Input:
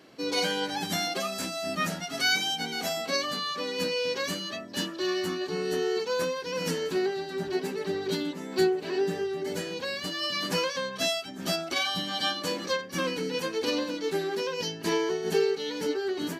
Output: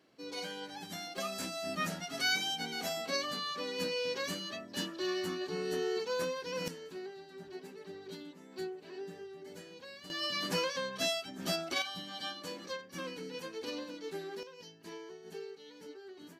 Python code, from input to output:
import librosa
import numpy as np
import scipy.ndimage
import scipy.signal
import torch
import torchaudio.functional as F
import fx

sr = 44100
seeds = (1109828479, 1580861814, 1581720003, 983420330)

y = fx.gain(x, sr, db=fx.steps((0.0, -13.5), (1.18, -6.0), (6.68, -16.5), (10.1, -5.0), (11.82, -12.0), (14.43, -20.0)))